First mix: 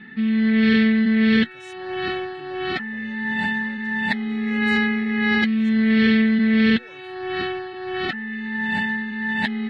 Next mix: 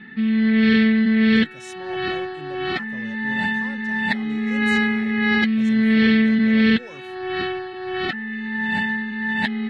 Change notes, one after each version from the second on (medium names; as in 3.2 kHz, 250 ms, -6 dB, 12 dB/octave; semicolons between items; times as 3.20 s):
speech +8.5 dB; reverb: on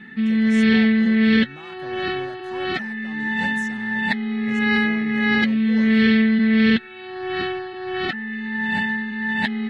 speech: entry -1.10 s